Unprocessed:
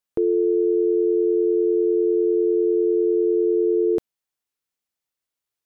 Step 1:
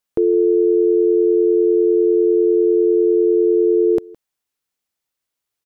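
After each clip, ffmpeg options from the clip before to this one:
-filter_complex "[0:a]asplit=2[s0][s1];[s1]adelay=163.3,volume=0.0708,highshelf=f=4000:g=-3.67[s2];[s0][s2]amix=inputs=2:normalize=0,volume=1.68"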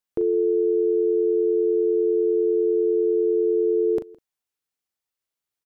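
-filter_complex "[0:a]asplit=2[s0][s1];[s1]adelay=39,volume=0.316[s2];[s0][s2]amix=inputs=2:normalize=0,volume=0.473"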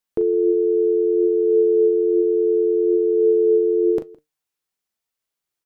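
-af "flanger=delay=4.4:depth=2.2:regen=77:speed=0.59:shape=sinusoidal,volume=2.37"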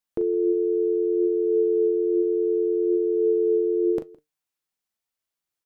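-af "bandreject=f=420:w=12,volume=0.708"

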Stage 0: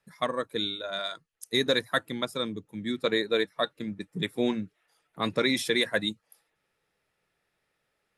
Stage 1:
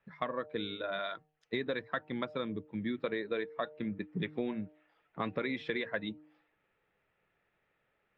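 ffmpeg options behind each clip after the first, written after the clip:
-af "lowpass=f=2900:w=0.5412,lowpass=f=2900:w=1.3066,bandreject=f=152.3:t=h:w=4,bandreject=f=304.6:t=h:w=4,bandreject=f=456.9:t=h:w=4,bandreject=f=609.2:t=h:w=4,bandreject=f=761.5:t=h:w=4,bandreject=f=913.8:t=h:w=4,acompressor=threshold=0.0224:ratio=5,volume=1.12"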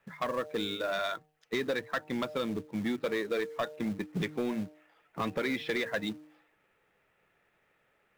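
-filter_complex "[0:a]asplit=2[s0][s1];[s1]acrusher=bits=2:mode=log:mix=0:aa=0.000001,volume=0.501[s2];[s0][s2]amix=inputs=2:normalize=0,lowshelf=f=160:g=-4.5,asoftclip=type=tanh:threshold=0.0447,volume=1.41"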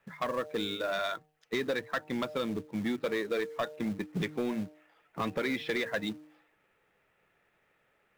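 -af anull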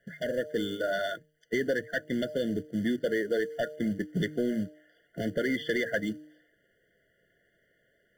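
-af "afftfilt=real='re*eq(mod(floor(b*sr/1024/710),2),0)':imag='im*eq(mod(floor(b*sr/1024/710),2),0)':win_size=1024:overlap=0.75,volume=1.5"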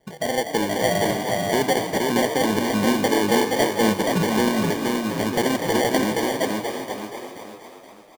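-filter_complex "[0:a]asplit=2[s0][s1];[s1]aecho=0:1:474|948|1422|1896|2370:0.708|0.269|0.102|0.0388|0.0148[s2];[s0][s2]amix=inputs=2:normalize=0,acrusher=samples=34:mix=1:aa=0.000001,asplit=2[s3][s4];[s4]asplit=8[s5][s6][s7][s8][s9][s10][s11][s12];[s5]adelay=246,afreqshift=48,volume=0.398[s13];[s6]adelay=492,afreqshift=96,volume=0.245[s14];[s7]adelay=738,afreqshift=144,volume=0.153[s15];[s8]adelay=984,afreqshift=192,volume=0.0944[s16];[s9]adelay=1230,afreqshift=240,volume=0.0589[s17];[s10]adelay=1476,afreqshift=288,volume=0.0363[s18];[s11]adelay=1722,afreqshift=336,volume=0.0226[s19];[s12]adelay=1968,afreqshift=384,volume=0.014[s20];[s13][s14][s15][s16][s17][s18][s19][s20]amix=inputs=8:normalize=0[s21];[s3][s21]amix=inputs=2:normalize=0,volume=2.24"

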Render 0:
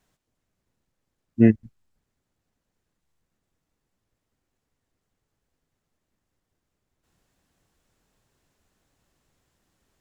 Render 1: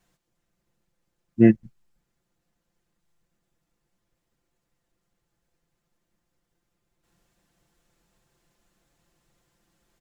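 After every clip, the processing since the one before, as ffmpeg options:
-af "aecho=1:1:5.8:0.65"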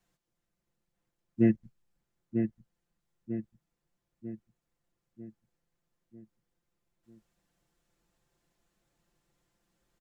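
-filter_complex "[0:a]acrossover=split=290[s0][s1];[s1]acompressor=threshold=0.126:ratio=6[s2];[s0][s2]amix=inputs=2:normalize=0,asplit=2[s3][s4];[s4]adelay=946,lowpass=f=2200:p=1,volume=0.501,asplit=2[s5][s6];[s6]adelay=946,lowpass=f=2200:p=1,volume=0.51,asplit=2[s7][s8];[s8]adelay=946,lowpass=f=2200:p=1,volume=0.51,asplit=2[s9][s10];[s10]adelay=946,lowpass=f=2200:p=1,volume=0.51,asplit=2[s11][s12];[s12]adelay=946,lowpass=f=2200:p=1,volume=0.51,asplit=2[s13][s14];[s14]adelay=946,lowpass=f=2200:p=1,volume=0.51[s15];[s5][s7][s9][s11][s13][s15]amix=inputs=6:normalize=0[s16];[s3][s16]amix=inputs=2:normalize=0,volume=0.422"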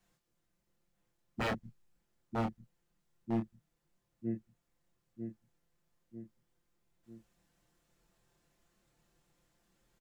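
-filter_complex "[0:a]aeval=exprs='0.0316*(abs(mod(val(0)/0.0316+3,4)-2)-1)':c=same,asplit=2[s0][s1];[s1]adelay=26,volume=0.631[s2];[s0][s2]amix=inputs=2:normalize=0,volume=1.12"

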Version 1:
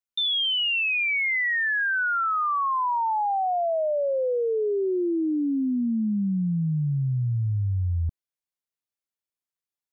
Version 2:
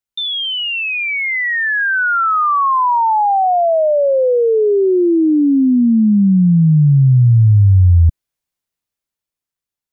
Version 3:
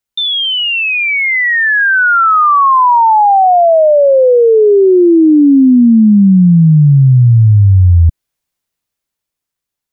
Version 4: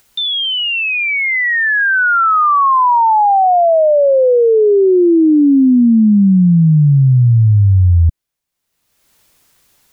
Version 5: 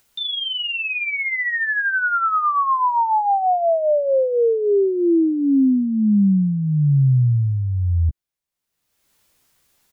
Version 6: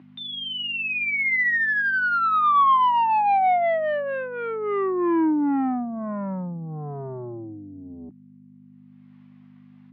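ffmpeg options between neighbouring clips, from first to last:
-af "lowshelf=f=160:g=7.5,dynaudnorm=f=390:g=9:m=2.24,volume=1.58"
-af "alimiter=limit=0.376:level=0:latency=1:release=128,volume=2"
-af "acompressor=mode=upward:threshold=0.0355:ratio=2.5,volume=0.708"
-filter_complex "[0:a]asplit=2[s0][s1];[s1]adelay=15,volume=0.398[s2];[s0][s2]amix=inputs=2:normalize=0,volume=0.376"
-af "aeval=exprs='(tanh(11.2*val(0)+0.1)-tanh(0.1))/11.2':c=same,aeval=exprs='val(0)+0.0224*(sin(2*PI*50*n/s)+sin(2*PI*2*50*n/s)/2+sin(2*PI*3*50*n/s)/3+sin(2*PI*4*50*n/s)/4+sin(2*PI*5*50*n/s)/5)':c=same,highpass=f=200:w=0.5412,highpass=f=200:w=1.3066,equalizer=f=220:t=q:w=4:g=-7,equalizer=f=310:t=q:w=4:g=5,equalizer=f=490:t=q:w=4:g=-10,equalizer=f=750:t=q:w=4:g=5,equalizer=f=1100:t=q:w=4:g=7,equalizer=f=2000:t=q:w=4:g=4,lowpass=f=2900:w=0.5412,lowpass=f=2900:w=1.3066"

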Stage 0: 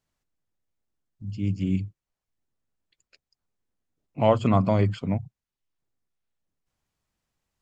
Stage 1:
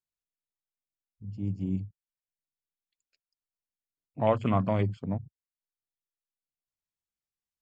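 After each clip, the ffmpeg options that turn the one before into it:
-af "afwtdn=0.0126,highshelf=f=2300:g=8.5,volume=0.531"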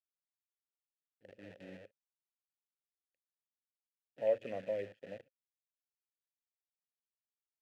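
-filter_complex "[0:a]acrusher=bits=7:dc=4:mix=0:aa=0.000001,asplit=3[s0][s1][s2];[s0]bandpass=f=530:t=q:w=8,volume=1[s3];[s1]bandpass=f=1840:t=q:w=8,volume=0.501[s4];[s2]bandpass=f=2480:t=q:w=8,volume=0.355[s5];[s3][s4][s5]amix=inputs=3:normalize=0"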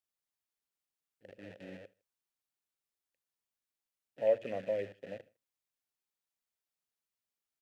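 -af "aecho=1:1:78|156:0.0631|0.0246,volume=1.41"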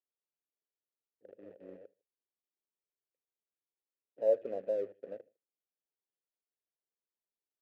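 -filter_complex "[0:a]bandpass=f=420:t=q:w=2.1:csg=0,asplit=2[s0][s1];[s1]aeval=exprs='sgn(val(0))*max(abs(val(0))-0.00282,0)':c=same,volume=0.398[s2];[s0][s2]amix=inputs=2:normalize=0,volume=1.19"

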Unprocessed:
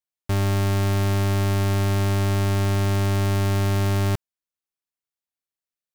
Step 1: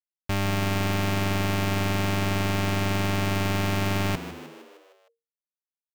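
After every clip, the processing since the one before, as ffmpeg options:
-filter_complex "[0:a]equalizer=f=100:t=o:w=0.67:g=-7,equalizer=f=400:t=o:w=0.67:g=-5,equalizer=f=2500:t=o:w=0.67:g=5,equalizer=f=10000:t=o:w=0.67:g=-5,acrusher=bits=6:mix=0:aa=0.5,asplit=2[s0][s1];[s1]asplit=6[s2][s3][s4][s5][s6][s7];[s2]adelay=154,afreqshift=77,volume=0.237[s8];[s3]adelay=308,afreqshift=154,volume=0.135[s9];[s4]adelay=462,afreqshift=231,volume=0.0767[s10];[s5]adelay=616,afreqshift=308,volume=0.0442[s11];[s6]adelay=770,afreqshift=385,volume=0.0251[s12];[s7]adelay=924,afreqshift=462,volume=0.0143[s13];[s8][s9][s10][s11][s12][s13]amix=inputs=6:normalize=0[s14];[s0][s14]amix=inputs=2:normalize=0"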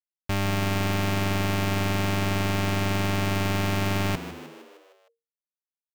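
-af anull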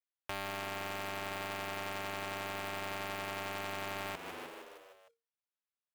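-filter_complex "[0:a]acompressor=threshold=0.0251:ratio=6,acrossover=split=410 4200:gain=0.141 1 0.0794[s0][s1][s2];[s0][s1][s2]amix=inputs=3:normalize=0,acrusher=bits=2:mode=log:mix=0:aa=0.000001"

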